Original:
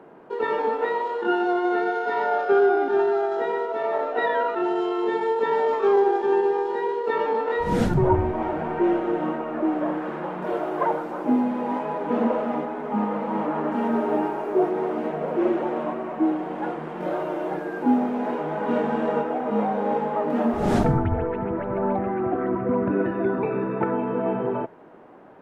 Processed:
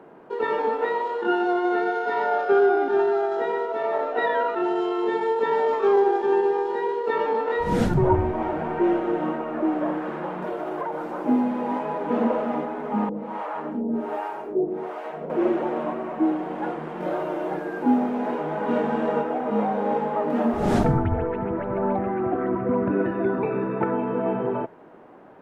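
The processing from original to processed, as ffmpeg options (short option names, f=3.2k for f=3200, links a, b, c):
-filter_complex "[0:a]asettb=1/sr,asplit=3[a][b][c];[a]atrim=end=10.424[d];[b]atrim=start=10.42:end=11.13,asetpts=PTS-STARTPTS,afade=t=in:d=0.004:c=qsin,afade=t=out:st=0.706:d=0.004:c=qsin,acompressor=threshold=-25dB:ratio=6:attack=3.2:release=140:knee=1:detection=peak[e];[c]atrim=start=11.126[f];[d][e]acrossfade=d=0.004:c1=hsin:c2=qsin[g];[g][f]acrossfade=d=0.004:c1=qsin:c2=hsin,asettb=1/sr,asplit=3[h][i][j];[h]atrim=end=13.094[k];[i]atrim=start=13.09:end=15.3,asetpts=PTS-STARTPTS,afade=t=in:d=0.004:c=qsin,afade=t=out:st=2.206:d=0.004:c=qsin,acrossover=split=520[l][m];[l]aeval=exprs='val(0)*(1-1/2+1/2*cos(2*PI*1.3*n/s))':c=same[n];[m]aeval=exprs='val(0)*(1-1/2-1/2*cos(2*PI*1.3*n/s))':c=same[o];[n][o]amix=inputs=2:normalize=0[p];[j]atrim=start=15.296[q];[k][p]acrossfade=d=0.004:c1=hsin:c2=qsin[r];[r][q]acrossfade=d=0.004:c1=qsin:c2=hsin"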